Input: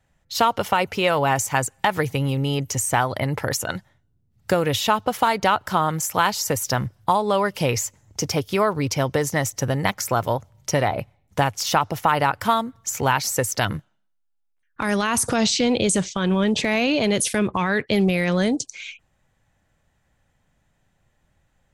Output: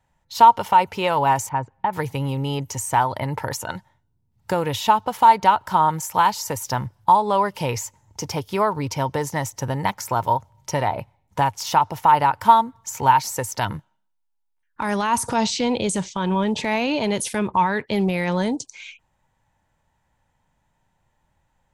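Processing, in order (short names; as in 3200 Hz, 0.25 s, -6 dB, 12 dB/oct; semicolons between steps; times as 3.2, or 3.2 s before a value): bell 920 Hz +13.5 dB 0.27 oct; harmonic-percussive split percussive -3 dB; 1.49–1.93 tape spacing loss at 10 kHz 44 dB; gain -2 dB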